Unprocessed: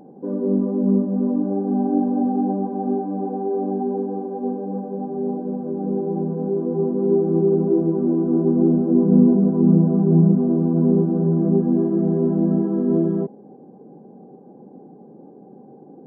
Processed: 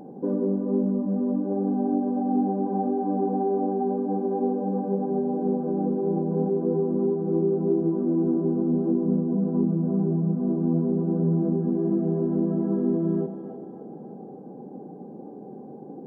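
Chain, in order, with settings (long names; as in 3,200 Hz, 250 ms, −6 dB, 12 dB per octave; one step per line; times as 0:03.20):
downward compressor, threshold −24 dBFS, peak gain reduction 14 dB
on a send: echo with a time of its own for lows and highs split 380 Hz, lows 119 ms, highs 298 ms, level −8.5 dB
on the sum: level +2.5 dB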